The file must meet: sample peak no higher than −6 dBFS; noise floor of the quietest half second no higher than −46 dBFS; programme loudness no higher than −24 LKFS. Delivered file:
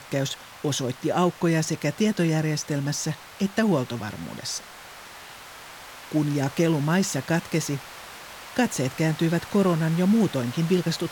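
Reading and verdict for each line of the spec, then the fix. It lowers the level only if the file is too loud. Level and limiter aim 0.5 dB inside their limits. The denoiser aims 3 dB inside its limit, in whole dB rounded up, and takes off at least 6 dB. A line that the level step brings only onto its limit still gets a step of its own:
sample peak −9.5 dBFS: in spec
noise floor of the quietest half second −44 dBFS: out of spec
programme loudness −25.0 LKFS: in spec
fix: broadband denoise 6 dB, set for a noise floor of −44 dBFS

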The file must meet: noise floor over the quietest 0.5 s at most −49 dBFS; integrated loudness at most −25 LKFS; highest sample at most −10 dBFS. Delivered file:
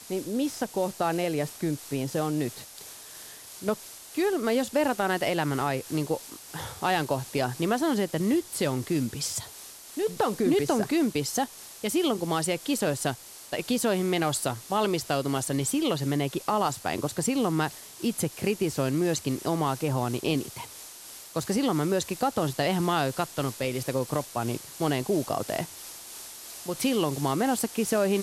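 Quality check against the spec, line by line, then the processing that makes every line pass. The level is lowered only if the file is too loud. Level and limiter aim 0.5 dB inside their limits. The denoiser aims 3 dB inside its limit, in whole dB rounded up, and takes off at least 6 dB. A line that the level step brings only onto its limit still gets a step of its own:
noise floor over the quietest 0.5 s −45 dBFS: out of spec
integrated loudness −28.0 LKFS: in spec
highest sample −12.5 dBFS: in spec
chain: broadband denoise 7 dB, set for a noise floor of −45 dBFS

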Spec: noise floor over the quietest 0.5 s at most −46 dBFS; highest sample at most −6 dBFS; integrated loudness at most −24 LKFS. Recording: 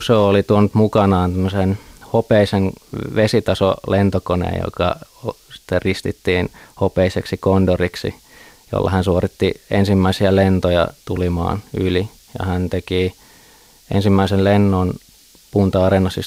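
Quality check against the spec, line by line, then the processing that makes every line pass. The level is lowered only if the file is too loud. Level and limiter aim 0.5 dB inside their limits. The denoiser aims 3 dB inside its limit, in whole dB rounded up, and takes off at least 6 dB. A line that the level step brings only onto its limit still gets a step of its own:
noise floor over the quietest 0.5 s −48 dBFS: in spec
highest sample −3.5 dBFS: out of spec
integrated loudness −17.5 LKFS: out of spec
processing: level −7 dB

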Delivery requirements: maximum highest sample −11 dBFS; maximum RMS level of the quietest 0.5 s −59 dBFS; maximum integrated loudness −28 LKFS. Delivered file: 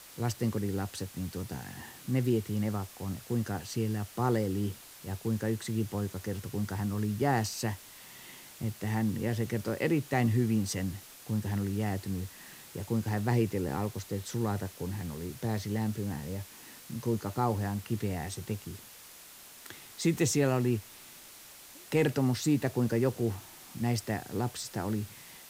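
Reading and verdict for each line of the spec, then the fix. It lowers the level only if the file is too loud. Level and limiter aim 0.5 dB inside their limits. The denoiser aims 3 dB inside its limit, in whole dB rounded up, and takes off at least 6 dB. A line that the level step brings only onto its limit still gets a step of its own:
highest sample −15.0 dBFS: in spec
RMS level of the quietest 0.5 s −51 dBFS: out of spec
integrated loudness −32.5 LKFS: in spec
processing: broadband denoise 11 dB, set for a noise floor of −51 dBFS

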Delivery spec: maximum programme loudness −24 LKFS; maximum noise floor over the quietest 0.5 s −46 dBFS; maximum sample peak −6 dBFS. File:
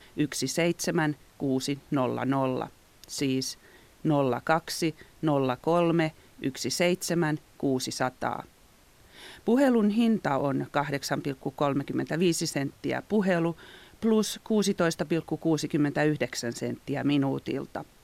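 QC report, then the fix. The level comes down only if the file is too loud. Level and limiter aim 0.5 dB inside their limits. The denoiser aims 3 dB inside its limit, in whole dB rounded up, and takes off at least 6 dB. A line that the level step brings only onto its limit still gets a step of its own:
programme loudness −28.0 LKFS: in spec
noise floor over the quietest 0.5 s −58 dBFS: in spec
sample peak −9.5 dBFS: in spec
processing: no processing needed

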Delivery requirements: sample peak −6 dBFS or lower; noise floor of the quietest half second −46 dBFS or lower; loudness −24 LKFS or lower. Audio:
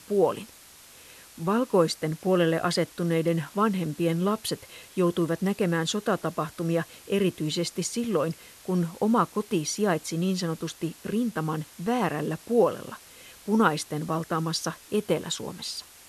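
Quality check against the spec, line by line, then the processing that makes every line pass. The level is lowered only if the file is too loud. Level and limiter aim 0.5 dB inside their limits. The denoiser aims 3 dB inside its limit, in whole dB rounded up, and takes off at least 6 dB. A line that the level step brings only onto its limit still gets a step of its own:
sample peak −9.0 dBFS: in spec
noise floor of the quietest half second −51 dBFS: in spec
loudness −27.0 LKFS: in spec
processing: no processing needed

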